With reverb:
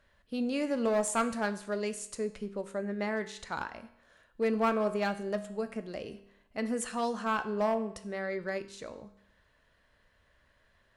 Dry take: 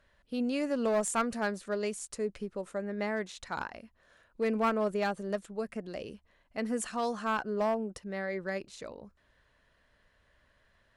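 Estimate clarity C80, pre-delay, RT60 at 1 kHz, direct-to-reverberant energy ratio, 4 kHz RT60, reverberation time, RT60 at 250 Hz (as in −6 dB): 16.5 dB, 12 ms, 0.70 s, 10.0 dB, 0.70 s, 0.70 s, 0.70 s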